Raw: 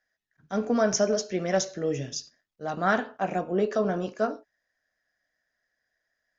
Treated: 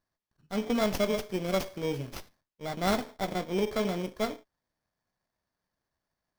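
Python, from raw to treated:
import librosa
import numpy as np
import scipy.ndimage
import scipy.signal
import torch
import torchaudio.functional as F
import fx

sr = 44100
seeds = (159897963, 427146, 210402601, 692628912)

y = fx.bit_reversed(x, sr, seeds[0], block=16)
y = fx.running_max(y, sr, window=5)
y = F.gain(torch.from_numpy(y), -3.5).numpy()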